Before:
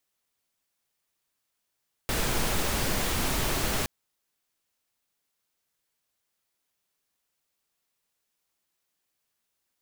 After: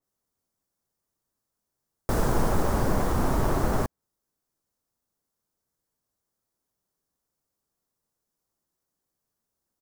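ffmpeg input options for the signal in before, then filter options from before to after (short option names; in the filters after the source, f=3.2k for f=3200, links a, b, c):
-f lavfi -i "anoisesrc=c=pink:a=0.229:d=1.77:r=44100:seed=1"
-filter_complex "[0:a]firequalizer=gain_entry='entry(1100,0);entry(2500,-14);entry(5400,-4)':delay=0.05:min_phase=1,asplit=2[a][b];[b]adynamicsmooth=sensitivity=6:basefreq=630,volume=0dB[c];[a][c]amix=inputs=2:normalize=0,adynamicequalizer=threshold=0.00398:dfrequency=3300:dqfactor=0.7:tfrequency=3300:tqfactor=0.7:attack=5:release=100:ratio=0.375:range=2.5:mode=cutabove:tftype=highshelf"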